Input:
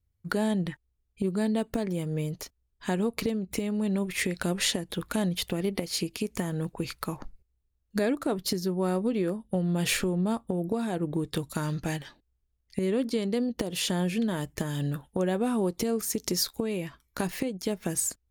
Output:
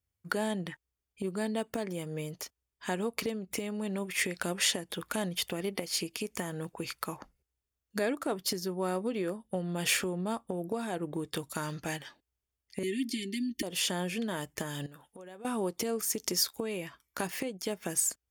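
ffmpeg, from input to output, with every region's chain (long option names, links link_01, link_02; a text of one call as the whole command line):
ffmpeg -i in.wav -filter_complex "[0:a]asettb=1/sr,asplit=3[link_01][link_02][link_03];[link_01]atrim=end=12.834[link_04];[link_02]atrim=start=12.83:end=13.63,asetpts=PTS-STARTPTS,afade=type=in:duration=0.004:curve=qsin,afade=type=out:start_time=0.796:duration=0.004:curve=qsin,asuperstop=centerf=840:order=20:qfactor=0.61,equalizer=frequency=14000:width=0.43:gain=3,aecho=1:1:3.3:0.65,atrim=end_sample=35280[link_05];[link_03]atrim=start=13.626[link_06];[link_04][link_05]acrossfade=duration=0.004:curve1=hsin:curve2=qsin[link_07];[link_07][link_06]acrossfade=duration=0.004:curve1=qsin:curve2=hsin,asettb=1/sr,asplit=3[link_08][link_09][link_10];[link_08]atrim=end=14.864[link_11];[link_09]atrim=start=14.86:end=15.45,asetpts=PTS-STARTPTS,afade=type=in:duration=0.004:curve=qsin,afade=type=out:start_time=0.586:duration=0.004:curve=qsin,lowshelf=frequency=200:gain=-6.5,acompressor=threshold=-40dB:ratio=8:attack=3.2:release=140:knee=1:detection=peak[link_12];[link_10]atrim=start=15.446[link_13];[link_11][link_12]acrossfade=duration=0.004:curve1=hsin:curve2=qsin[link_14];[link_14][link_13]acrossfade=duration=0.004:curve1=qsin:curve2=hsin,highpass=52,lowshelf=frequency=320:gain=-11,bandreject=frequency=4000:width=9.5" out.wav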